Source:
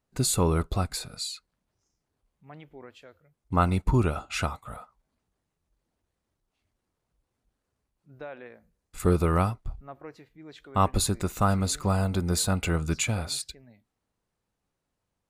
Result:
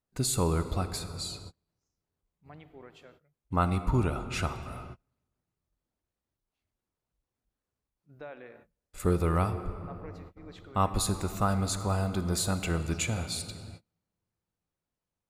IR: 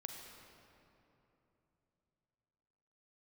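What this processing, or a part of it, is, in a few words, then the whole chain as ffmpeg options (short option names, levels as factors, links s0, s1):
keyed gated reverb: -filter_complex "[0:a]asplit=3[s0][s1][s2];[1:a]atrim=start_sample=2205[s3];[s1][s3]afir=irnorm=-1:irlink=0[s4];[s2]apad=whole_len=674650[s5];[s4][s5]sidechaingate=range=0.0178:threshold=0.00178:ratio=16:detection=peak,volume=1.26[s6];[s0][s6]amix=inputs=2:normalize=0,volume=0.376"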